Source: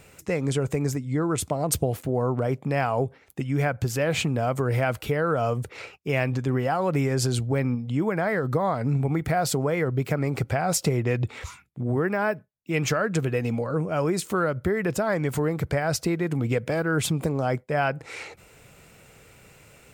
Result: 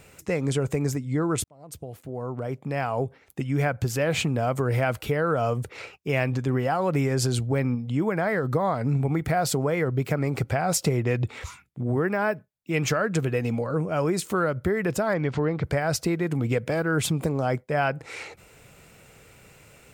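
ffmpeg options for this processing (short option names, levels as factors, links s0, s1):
-filter_complex "[0:a]asplit=3[s0][s1][s2];[s0]afade=t=out:st=15.13:d=0.02[s3];[s1]lowpass=f=4900:w=0.5412,lowpass=f=4900:w=1.3066,afade=t=in:st=15.13:d=0.02,afade=t=out:st=15.63:d=0.02[s4];[s2]afade=t=in:st=15.63:d=0.02[s5];[s3][s4][s5]amix=inputs=3:normalize=0,asplit=2[s6][s7];[s6]atrim=end=1.44,asetpts=PTS-STARTPTS,afade=t=out:st=1.436:d=0.004:c=hsin[s8];[s7]atrim=start=1.44,asetpts=PTS-STARTPTS,afade=t=in:d=1.96[s9];[s8][s9]concat=n=2:v=0:a=1"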